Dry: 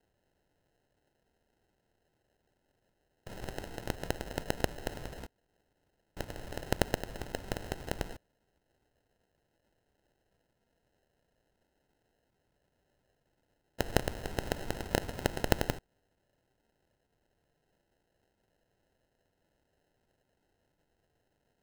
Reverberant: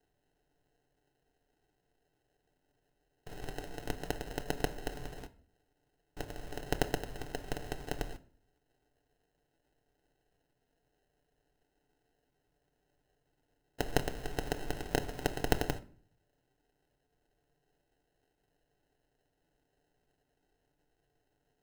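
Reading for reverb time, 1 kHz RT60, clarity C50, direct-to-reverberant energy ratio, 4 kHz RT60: 0.50 s, 0.45 s, 19.0 dB, 5.5 dB, 0.35 s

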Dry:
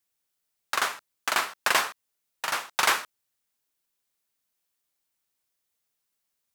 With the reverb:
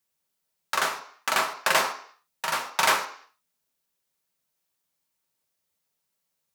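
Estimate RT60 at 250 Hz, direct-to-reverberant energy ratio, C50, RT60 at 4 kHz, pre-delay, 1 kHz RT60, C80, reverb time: 0.50 s, 3.0 dB, 11.0 dB, 0.60 s, 3 ms, 0.55 s, 14.0 dB, 0.55 s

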